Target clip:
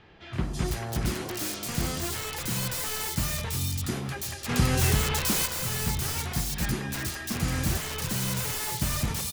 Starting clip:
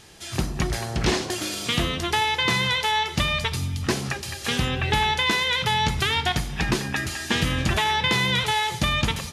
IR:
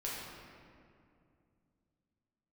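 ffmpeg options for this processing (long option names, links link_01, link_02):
-filter_complex "[0:a]acrossover=split=310[link_01][link_02];[link_02]aeval=exprs='(mod(15*val(0)+1,2)-1)/15':channel_layout=same[link_03];[link_01][link_03]amix=inputs=2:normalize=0,acrossover=split=3200[link_04][link_05];[link_05]adelay=330[link_06];[link_04][link_06]amix=inputs=2:normalize=0,asettb=1/sr,asplit=3[link_07][link_08][link_09];[link_07]atrim=end=4.494[link_10];[link_08]atrim=start=4.49:end=5.46,asetpts=PTS-STARTPTS,afade=type=in:duration=0.004:curve=qsin,afade=type=out:start_time=0.966:duration=0.004:curve=qsin,acontrast=43[link_11];[link_09]atrim=start=5.456[link_12];[link_10][link_11]acrossfade=duration=0.004:curve1=hsin:curve2=qsin[link_13];[link_13][link_12]acrossfade=duration=0.004:curve1=qsin:curve2=hsin,volume=-3dB"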